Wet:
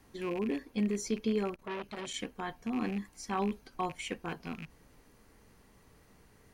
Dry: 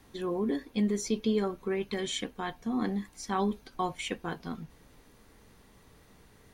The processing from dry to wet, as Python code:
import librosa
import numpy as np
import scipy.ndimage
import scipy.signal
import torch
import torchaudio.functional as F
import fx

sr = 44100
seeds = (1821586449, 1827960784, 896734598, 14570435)

y = fx.rattle_buzz(x, sr, strikes_db=-40.0, level_db=-31.0)
y = fx.peak_eq(y, sr, hz=3600.0, db=-7.0, octaves=0.22)
y = fx.transformer_sat(y, sr, knee_hz=1400.0, at=(1.54, 2.16))
y = y * 10.0 ** (-3.0 / 20.0)